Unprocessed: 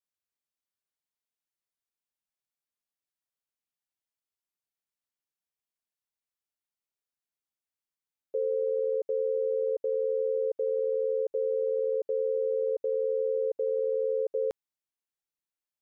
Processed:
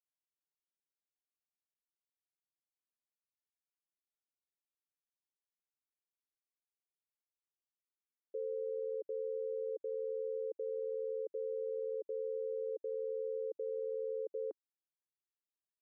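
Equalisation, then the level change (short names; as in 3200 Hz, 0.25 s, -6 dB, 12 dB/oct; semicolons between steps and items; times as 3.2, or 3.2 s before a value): ladder band-pass 390 Hz, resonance 50%; -1.0 dB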